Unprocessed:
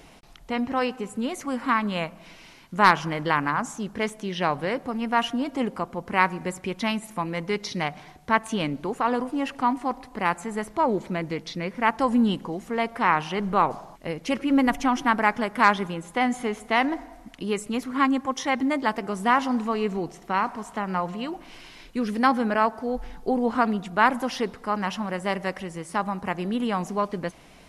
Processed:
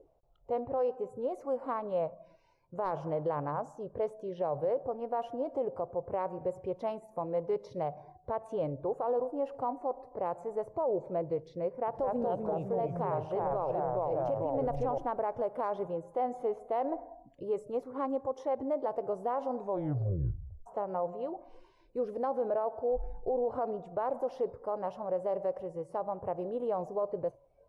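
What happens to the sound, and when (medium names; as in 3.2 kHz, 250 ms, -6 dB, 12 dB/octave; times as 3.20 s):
11.68–14.98 s: ever faster or slower copies 195 ms, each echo -2 st, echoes 3
19.57 s: tape stop 1.09 s
whole clip: spectral noise reduction 16 dB; FFT filter 130 Hz 0 dB, 210 Hz -20 dB, 550 Hz +5 dB, 1.9 kHz -27 dB; peak limiter -23.5 dBFS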